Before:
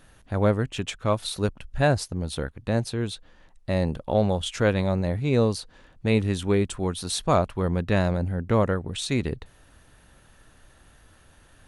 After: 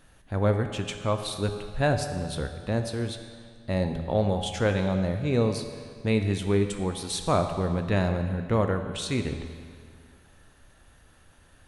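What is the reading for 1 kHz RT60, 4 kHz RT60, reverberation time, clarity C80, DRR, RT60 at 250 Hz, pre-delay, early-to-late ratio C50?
2.0 s, 1.8 s, 2.0 s, 8.0 dB, 6.0 dB, 2.1 s, 12 ms, 7.0 dB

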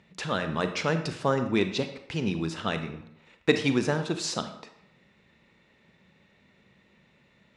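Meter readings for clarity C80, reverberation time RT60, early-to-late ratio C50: 12.0 dB, 0.75 s, 9.5 dB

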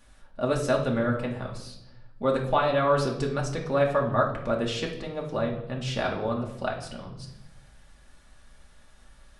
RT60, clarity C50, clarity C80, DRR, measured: 0.85 s, 7.0 dB, 11.0 dB, -1.5 dB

